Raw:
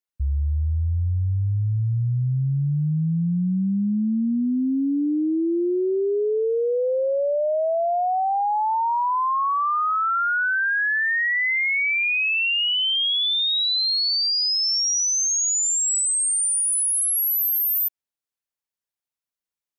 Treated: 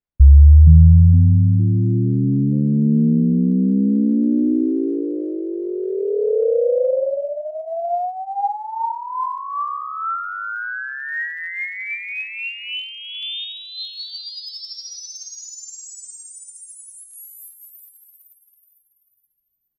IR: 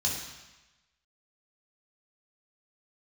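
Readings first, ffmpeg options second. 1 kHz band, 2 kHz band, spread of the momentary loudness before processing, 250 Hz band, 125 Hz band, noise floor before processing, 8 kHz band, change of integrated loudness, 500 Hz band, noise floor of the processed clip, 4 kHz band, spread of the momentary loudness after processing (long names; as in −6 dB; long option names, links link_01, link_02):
−2.5 dB, −6.0 dB, 5 LU, +6.0 dB, +9.5 dB, below −85 dBFS, −15.5 dB, +3.0 dB, +2.0 dB, −65 dBFS, −9.5 dB, 22 LU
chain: -filter_complex "[0:a]aemphasis=mode=reproduction:type=riaa,asplit=2[link_01][link_02];[link_02]asplit=5[link_03][link_04][link_05][link_06][link_07];[link_03]adelay=462,afreqshift=90,volume=-6dB[link_08];[link_04]adelay=924,afreqshift=180,volume=-13.7dB[link_09];[link_05]adelay=1386,afreqshift=270,volume=-21.5dB[link_10];[link_06]adelay=1848,afreqshift=360,volume=-29.2dB[link_11];[link_07]adelay=2310,afreqshift=450,volume=-37dB[link_12];[link_08][link_09][link_10][link_11][link_12]amix=inputs=5:normalize=0[link_13];[link_01][link_13]amix=inputs=2:normalize=0,aphaser=in_gain=1:out_gain=1:delay=4.5:decay=0.55:speed=0.15:type=sinusoidal,volume=-6dB"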